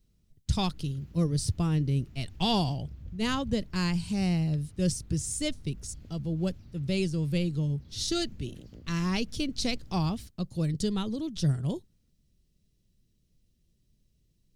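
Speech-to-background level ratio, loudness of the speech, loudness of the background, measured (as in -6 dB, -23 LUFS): 20.0 dB, -30.5 LUFS, -50.5 LUFS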